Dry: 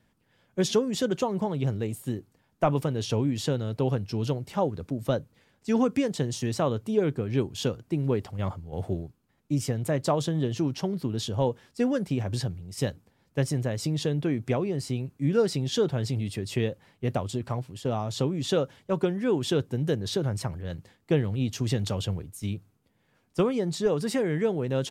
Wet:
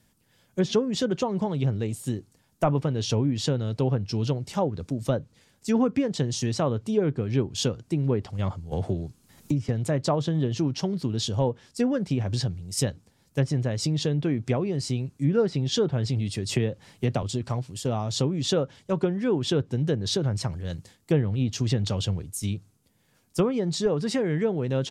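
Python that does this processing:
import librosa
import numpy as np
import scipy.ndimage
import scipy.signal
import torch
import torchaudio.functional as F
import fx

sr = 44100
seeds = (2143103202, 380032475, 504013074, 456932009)

y = fx.band_squash(x, sr, depth_pct=100, at=(8.71, 9.69))
y = fx.band_squash(y, sr, depth_pct=70, at=(16.49, 17.23))
y = fx.env_lowpass_down(y, sr, base_hz=1900.0, full_db=-21.0)
y = fx.bass_treble(y, sr, bass_db=3, treble_db=13)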